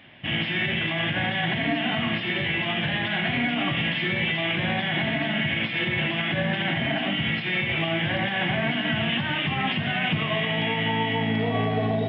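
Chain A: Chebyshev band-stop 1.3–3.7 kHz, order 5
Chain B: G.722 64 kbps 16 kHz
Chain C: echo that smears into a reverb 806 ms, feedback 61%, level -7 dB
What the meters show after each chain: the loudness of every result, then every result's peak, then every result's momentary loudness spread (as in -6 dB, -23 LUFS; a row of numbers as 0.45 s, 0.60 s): -29.5 LUFS, -24.5 LUFS, -23.5 LUFS; -14.5 dBFS, -14.0 dBFS, -12.0 dBFS; 5 LU, 1 LU, 1 LU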